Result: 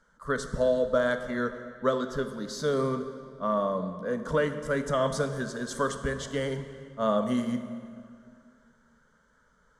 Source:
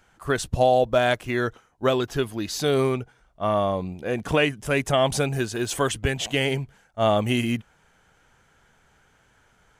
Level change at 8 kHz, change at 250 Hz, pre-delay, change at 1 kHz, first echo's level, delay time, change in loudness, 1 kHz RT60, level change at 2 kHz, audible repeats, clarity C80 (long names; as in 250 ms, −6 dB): −8.5 dB, −3.5 dB, 13 ms, −6.5 dB, no echo audible, no echo audible, −5.5 dB, 2.1 s, −6.5 dB, no echo audible, 10.5 dB